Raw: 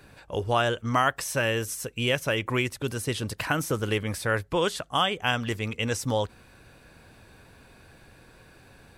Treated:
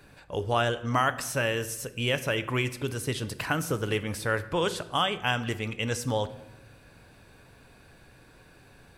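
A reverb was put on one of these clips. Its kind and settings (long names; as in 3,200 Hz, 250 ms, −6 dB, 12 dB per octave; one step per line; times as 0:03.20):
rectangular room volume 400 cubic metres, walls mixed, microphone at 0.33 metres
level −2 dB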